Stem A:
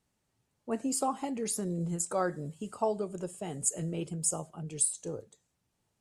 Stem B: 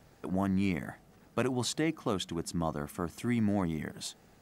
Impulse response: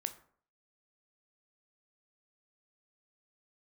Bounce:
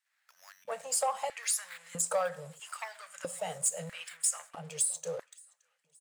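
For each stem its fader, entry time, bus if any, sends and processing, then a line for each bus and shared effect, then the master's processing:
-5.0 dB, 0.00 s, send -3.5 dB, echo send -23 dB, compression, threshold -30 dBFS, peak gain reduction 7.5 dB; waveshaping leveller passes 2
-3.5 dB, 0.05 s, no send, no echo send, tremolo saw up 1.7 Hz, depth 85%; sample-rate reducer 5.9 kHz, jitter 0%; auto duck -11 dB, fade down 0.55 s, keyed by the first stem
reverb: on, RT60 0.55 s, pre-delay 12 ms
echo: feedback delay 571 ms, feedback 47%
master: elliptic band-stop 170–510 Hz, stop band 40 dB; bass shelf 270 Hz -8 dB; LFO high-pass square 0.77 Hz 280–1700 Hz

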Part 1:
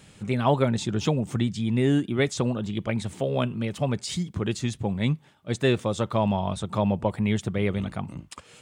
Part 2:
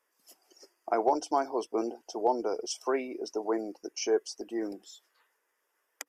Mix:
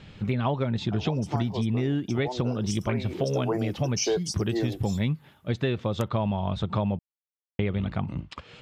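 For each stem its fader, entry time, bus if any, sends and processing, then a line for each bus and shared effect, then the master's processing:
+2.5 dB, 0.00 s, muted 6.99–7.59 s, no send, low-pass 4.3 kHz 24 dB/octave; bass shelf 100 Hz +9 dB
0.87 s -21.5 dB -> 1.38 s -10.5 dB -> 2.90 s -10.5 dB -> 3.40 s -1 dB -> 4.83 s -1 dB -> 5.43 s -11.5 dB, 0.00 s, no send, level rider gain up to 10 dB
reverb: none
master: treble shelf 9.5 kHz +11.5 dB; compression, threshold -23 dBFS, peak gain reduction 10.5 dB

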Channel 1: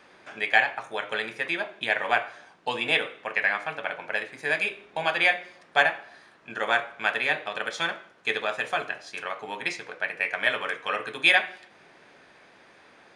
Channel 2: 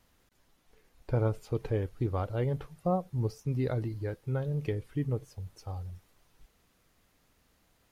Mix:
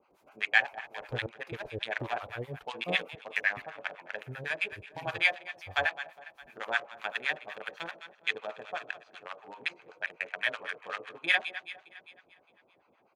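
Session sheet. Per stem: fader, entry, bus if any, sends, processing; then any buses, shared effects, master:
0.0 dB, 0.00 s, no send, echo send -15 dB, local Wiener filter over 25 samples; low-pass 8.6 kHz 12 dB/octave
+1.0 dB, 0.00 s, muted 3.62–4.18 s, no send, no echo send, trance gate ".xxx..x.xxxx." 143 bpm -60 dB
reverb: none
echo: feedback delay 205 ms, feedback 53%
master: high-pass 42 Hz; bass shelf 490 Hz -9.5 dB; harmonic tremolo 7.9 Hz, depth 100%, crossover 830 Hz

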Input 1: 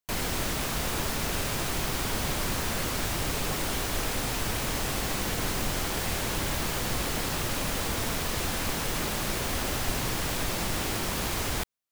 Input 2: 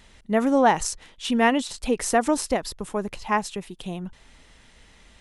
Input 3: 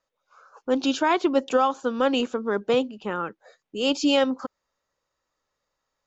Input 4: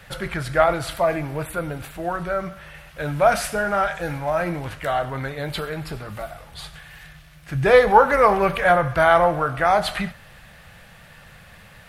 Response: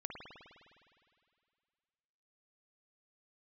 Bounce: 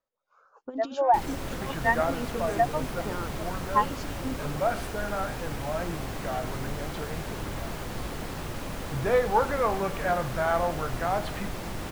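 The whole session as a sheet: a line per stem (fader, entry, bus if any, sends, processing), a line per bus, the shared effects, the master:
-3.0 dB, 1.05 s, no send, none
+3.0 dB, 0.45 s, no send, high-pass 980 Hz 12 dB/octave; compression 2.5:1, threshold -25 dBFS, peak gain reduction 6 dB; spectral contrast expander 2.5:1
-9.5 dB, 0.00 s, no send, compressor with a negative ratio -25 dBFS, ratio -0.5
-9.0 dB, 1.40 s, no send, none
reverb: none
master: treble shelf 2.1 kHz -10 dB

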